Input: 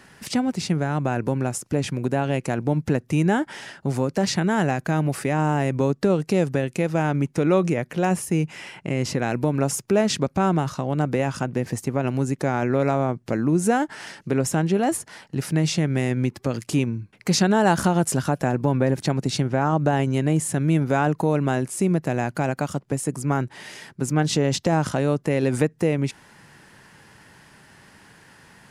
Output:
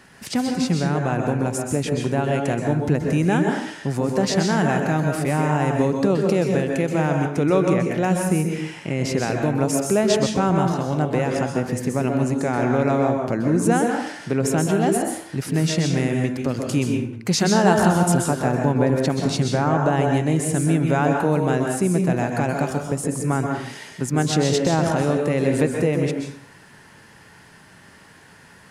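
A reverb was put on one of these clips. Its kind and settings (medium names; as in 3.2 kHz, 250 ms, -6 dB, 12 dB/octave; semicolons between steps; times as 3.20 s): plate-style reverb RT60 0.59 s, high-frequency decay 0.75×, pre-delay 115 ms, DRR 2 dB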